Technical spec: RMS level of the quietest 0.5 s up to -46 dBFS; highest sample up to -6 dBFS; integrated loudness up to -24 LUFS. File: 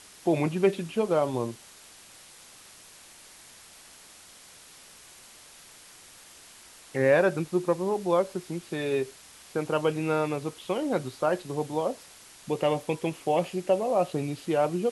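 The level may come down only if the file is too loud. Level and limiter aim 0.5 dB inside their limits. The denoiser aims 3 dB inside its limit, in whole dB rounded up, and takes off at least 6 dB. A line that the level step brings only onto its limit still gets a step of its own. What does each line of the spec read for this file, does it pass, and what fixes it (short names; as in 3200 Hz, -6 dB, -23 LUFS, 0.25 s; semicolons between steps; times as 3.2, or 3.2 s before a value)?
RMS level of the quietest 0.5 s -51 dBFS: OK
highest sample -10.5 dBFS: OK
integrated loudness -28.0 LUFS: OK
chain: none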